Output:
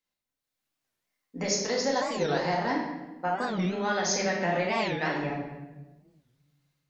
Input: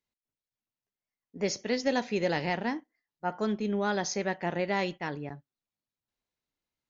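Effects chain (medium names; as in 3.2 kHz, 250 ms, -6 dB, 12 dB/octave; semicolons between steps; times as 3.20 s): compression, threshold -32 dBFS, peak gain reduction 10 dB; bass shelf 380 Hz -8 dB; level rider gain up to 7 dB; 1.45–2.70 s: fifteen-band graphic EQ 250 Hz -6 dB, 1 kHz +5 dB, 2.5 kHz -10 dB, 6.3 kHz +4 dB; simulated room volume 620 m³, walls mixed, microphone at 2.1 m; warped record 45 rpm, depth 250 cents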